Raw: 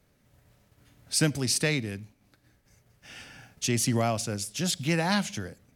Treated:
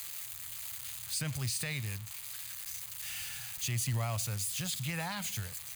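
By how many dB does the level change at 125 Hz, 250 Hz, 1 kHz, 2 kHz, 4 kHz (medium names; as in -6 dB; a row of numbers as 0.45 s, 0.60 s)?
-4.5 dB, -14.5 dB, -9.5 dB, -7.5 dB, -6.5 dB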